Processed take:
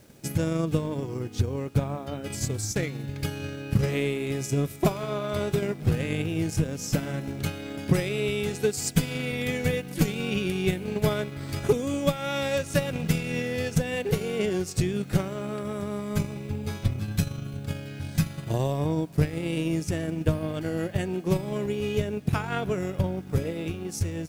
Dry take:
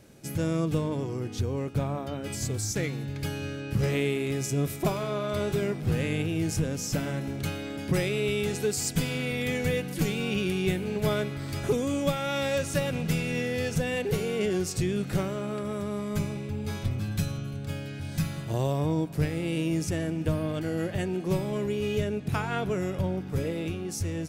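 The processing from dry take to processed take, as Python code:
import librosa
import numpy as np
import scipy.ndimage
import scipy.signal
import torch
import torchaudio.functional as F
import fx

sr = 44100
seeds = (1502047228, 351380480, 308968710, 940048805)

y = fx.transient(x, sr, attack_db=6, sustain_db=-6)
y = fx.quant_dither(y, sr, seeds[0], bits=10, dither='none')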